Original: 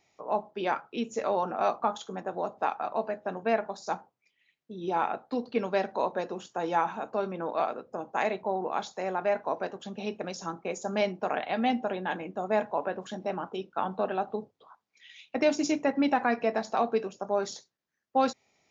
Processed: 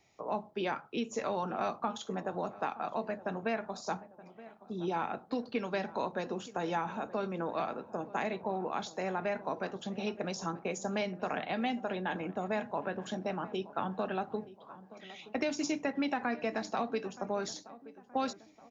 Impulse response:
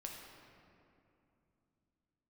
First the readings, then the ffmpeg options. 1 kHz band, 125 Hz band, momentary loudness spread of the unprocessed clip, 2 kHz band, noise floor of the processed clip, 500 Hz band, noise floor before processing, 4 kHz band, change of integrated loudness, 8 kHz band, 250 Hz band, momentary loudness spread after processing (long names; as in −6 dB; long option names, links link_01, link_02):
−6.0 dB, +1.0 dB, 8 LU, −3.5 dB, −58 dBFS, −6.0 dB, −80 dBFS, −2.0 dB, −5.0 dB, can't be measured, −3.5 dB, 7 LU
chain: -filter_complex "[0:a]acrossover=split=290|1200[link_01][link_02][link_03];[link_01]acompressor=threshold=-42dB:ratio=4[link_04];[link_02]acompressor=threshold=-37dB:ratio=4[link_05];[link_03]acompressor=threshold=-37dB:ratio=4[link_06];[link_04][link_05][link_06]amix=inputs=3:normalize=0,lowshelf=frequency=220:gain=6.5,asplit=2[link_07][link_08];[link_08]adelay=923,lowpass=frequency=1500:poles=1,volume=-17dB,asplit=2[link_09][link_10];[link_10]adelay=923,lowpass=frequency=1500:poles=1,volume=0.51,asplit=2[link_11][link_12];[link_12]adelay=923,lowpass=frequency=1500:poles=1,volume=0.51,asplit=2[link_13][link_14];[link_14]adelay=923,lowpass=frequency=1500:poles=1,volume=0.51[link_15];[link_07][link_09][link_11][link_13][link_15]amix=inputs=5:normalize=0"